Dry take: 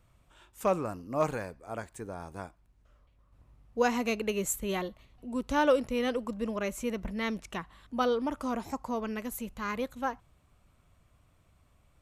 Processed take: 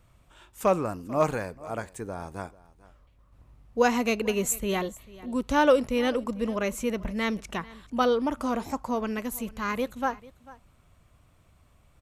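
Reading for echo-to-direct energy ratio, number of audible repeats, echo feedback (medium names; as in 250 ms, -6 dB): -20.5 dB, 1, no regular repeats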